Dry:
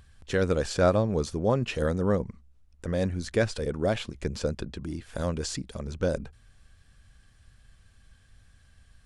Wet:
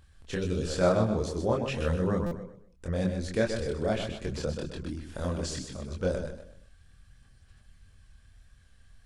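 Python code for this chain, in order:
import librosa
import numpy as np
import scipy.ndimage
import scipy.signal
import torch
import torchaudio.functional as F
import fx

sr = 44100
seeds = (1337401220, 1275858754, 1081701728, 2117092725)

p1 = x + fx.echo_feedback(x, sr, ms=127, feedback_pct=33, wet_db=-7.0, dry=0)
p2 = fx.spec_box(p1, sr, start_s=0.35, length_s=0.32, low_hz=470.0, high_hz=2300.0, gain_db=-13)
p3 = fx.chorus_voices(p2, sr, voices=4, hz=1.5, base_ms=25, depth_ms=3.0, mix_pct=45)
p4 = fx.buffer_glitch(p3, sr, at_s=(2.26,), block=256, repeats=8)
y = fx.band_squash(p4, sr, depth_pct=40, at=(4.31, 4.9))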